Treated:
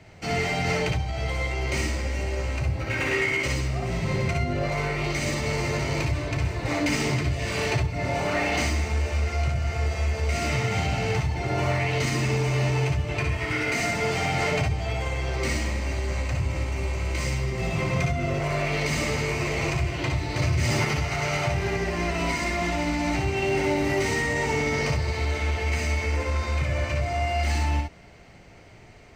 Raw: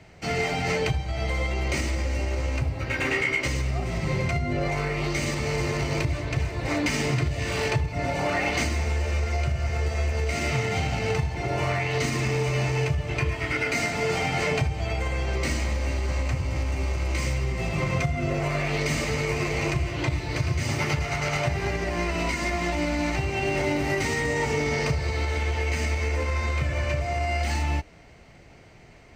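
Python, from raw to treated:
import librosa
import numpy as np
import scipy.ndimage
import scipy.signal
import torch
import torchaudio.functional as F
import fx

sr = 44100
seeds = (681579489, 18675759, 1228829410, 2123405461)

p1 = np.clip(x, -10.0 ** (-25.5 / 20.0), 10.0 ** (-25.5 / 20.0))
p2 = x + (p1 * 10.0 ** (-7.0 / 20.0))
p3 = fx.room_early_taps(p2, sr, ms=(59, 69), db=(-6.0, -6.0))
p4 = fx.env_flatten(p3, sr, amount_pct=70, at=(20.39, 20.85))
y = p4 * 10.0 ** (-3.5 / 20.0)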